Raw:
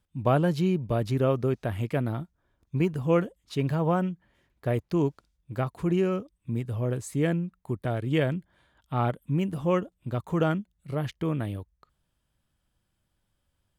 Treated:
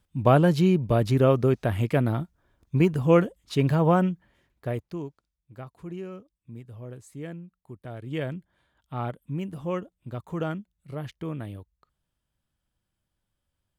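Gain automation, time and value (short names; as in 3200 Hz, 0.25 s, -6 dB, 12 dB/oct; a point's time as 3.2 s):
4.08 s +4.5 dB
4.8 s -4 dB
5.08 s -12 dB
7.76 s -12 dB
8.25 s -5 dB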